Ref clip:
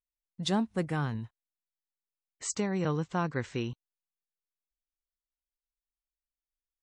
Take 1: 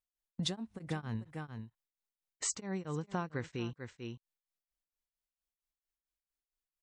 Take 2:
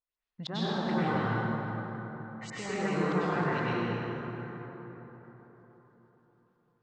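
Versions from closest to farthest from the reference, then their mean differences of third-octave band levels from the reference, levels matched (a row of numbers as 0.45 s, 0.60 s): 1, 2; 4.5 dB, 10.5 dB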